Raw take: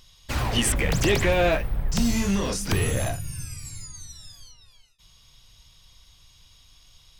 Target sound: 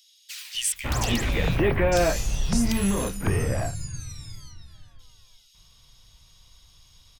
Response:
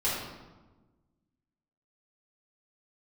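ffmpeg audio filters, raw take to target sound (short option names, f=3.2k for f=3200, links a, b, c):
-filter_complex "[0:a]acrossover=split=2500[a][b];[a]adelay=550[c];[c][b]amix=inputs=2:normalize=0"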